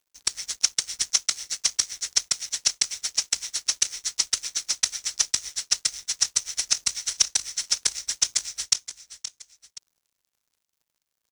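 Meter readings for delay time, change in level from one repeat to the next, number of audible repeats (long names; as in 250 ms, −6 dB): 523 ms, −7.5 dB, 2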